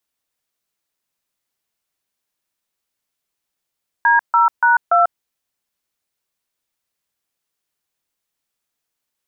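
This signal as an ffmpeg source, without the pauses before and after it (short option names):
-f lavfi -i "aevalsrc='0.237*clip(min(mod(t,0.288),0.143-mod(t,0.288))/0.002,0,1)*(eq(floor(t/0.288),0)*(sin(2*PI*941*mod(t,0.288))+sin(2*PI*1633*mod(t,0.288)))+eq(floor(t/0.288),1)*(sin(2*PI*941*mod(t,0.288))+sin(2*PI*1336*mod(t,0.288)))+eq(floor(t/0.288),2)*(sin(2*PI*941*mod(t,0.288))+sin(2*PI*1477*mod(t,0.288)))+eq(floor(t/0.288),3)*(sin(2*PI*697*mod(t,0.288))+sin(2*PI*1336*mod(t,0.288))))':d=1.152:s=44100"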